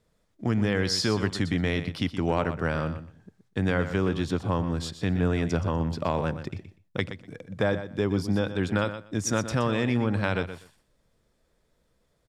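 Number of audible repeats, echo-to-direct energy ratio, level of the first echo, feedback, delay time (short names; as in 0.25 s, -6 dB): 2, -11.0 dB, -11.0 dB, 16%, 0.122 s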